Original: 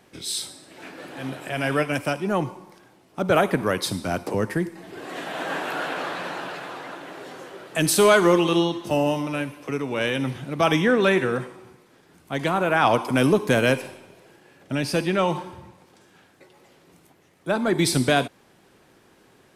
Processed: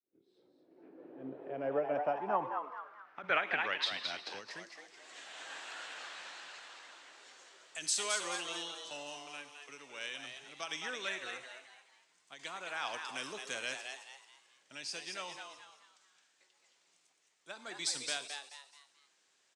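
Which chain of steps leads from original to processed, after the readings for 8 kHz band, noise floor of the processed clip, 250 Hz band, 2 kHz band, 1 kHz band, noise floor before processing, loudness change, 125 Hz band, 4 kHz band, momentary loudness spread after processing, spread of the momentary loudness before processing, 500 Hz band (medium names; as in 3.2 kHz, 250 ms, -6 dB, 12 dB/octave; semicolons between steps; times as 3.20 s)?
-9.0 dB, -73 dBFS, -26.5 dB, -12.5 dB, -14.5 dB, -57 dBFS, -15.5 dB, -32.0 dB, -9.0 dB, 19 LU, 18 LU, -19.0 dB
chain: fade-in on the opening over 5.05 s; distance through air 120 m; band-pass sweep 360 Hz -> 7.6 kHz, 1.26–4.88 s; on a send: frequency-shifting echo 216 ms, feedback 37%, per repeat +140 Hz, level -6 dB; on the sum: endings held to a fixed fall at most 170 dB/s; trim +5.5 dB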